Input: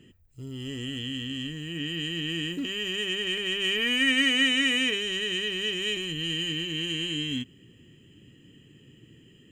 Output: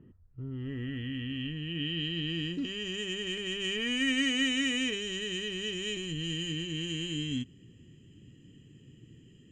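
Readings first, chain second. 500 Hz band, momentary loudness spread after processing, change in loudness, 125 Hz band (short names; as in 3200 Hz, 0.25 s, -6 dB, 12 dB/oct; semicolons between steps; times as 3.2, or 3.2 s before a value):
-4.0 dB, 10 LU, -5.5 dB, +0.5 dB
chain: low shelf 340 Hz +11 dB; low-pass sweep 1100 Hz -> 6800 Hz, 0.01–3.06; gain -8.5 dB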